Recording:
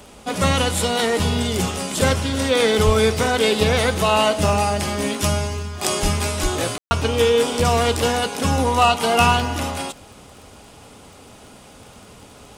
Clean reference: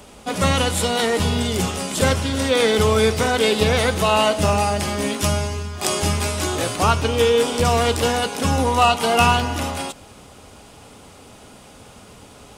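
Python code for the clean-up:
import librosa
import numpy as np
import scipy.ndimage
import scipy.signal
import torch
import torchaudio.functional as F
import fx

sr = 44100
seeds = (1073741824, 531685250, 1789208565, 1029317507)

y = fx.fix_declick_ar(x, sr, threshold=6.5)
y = fx.fix_deplosive(y, sr, at_s=(2.85, 6.02, 6.42))
y = fx.fix_ambience(y, sr, seeds[0], print_start_s=11.3, print_end_s=11.8, start_s=6.78, end_s=6.91)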